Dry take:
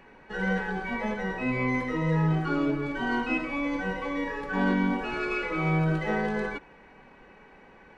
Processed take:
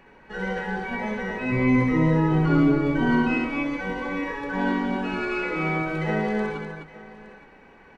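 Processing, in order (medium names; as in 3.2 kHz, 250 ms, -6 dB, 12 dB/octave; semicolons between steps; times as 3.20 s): 1.52–3.28 s: bass shelf 380 Hz +10 dB; multi-tap echo 66/254/866 ms -5.5/-6.5/-16.5 dB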